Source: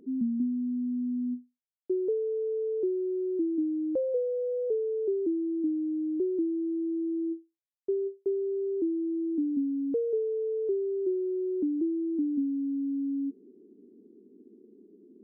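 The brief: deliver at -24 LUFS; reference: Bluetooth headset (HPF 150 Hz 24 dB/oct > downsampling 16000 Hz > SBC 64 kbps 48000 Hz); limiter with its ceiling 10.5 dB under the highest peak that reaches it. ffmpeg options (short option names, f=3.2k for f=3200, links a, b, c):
-af "alimiter=level_in=7.5dB:limit=-24dB:level=0:latency=1,volume=-7.5dB,highpass=f=150:w=0.5412,highpass=f=150:w=1.3066,aresample=16000,aresample=44100,volume=11.5dB" -ar 48000 -c:a sbc -b:a 64k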